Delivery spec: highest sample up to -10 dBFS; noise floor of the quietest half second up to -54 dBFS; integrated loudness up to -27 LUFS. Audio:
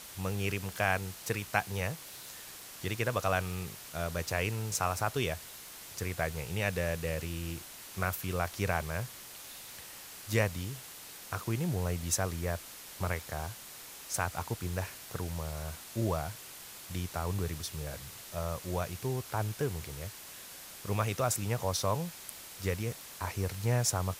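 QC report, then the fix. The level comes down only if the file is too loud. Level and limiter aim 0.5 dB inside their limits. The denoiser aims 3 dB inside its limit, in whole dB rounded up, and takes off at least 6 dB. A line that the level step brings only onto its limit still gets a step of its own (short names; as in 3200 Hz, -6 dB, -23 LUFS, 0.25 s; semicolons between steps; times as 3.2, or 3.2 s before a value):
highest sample -10.5 dBFS: OK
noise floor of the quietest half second -48 dBFS: fail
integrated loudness -35.0 LUFS: OK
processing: denoiser 9 dB, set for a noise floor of -48 dBFS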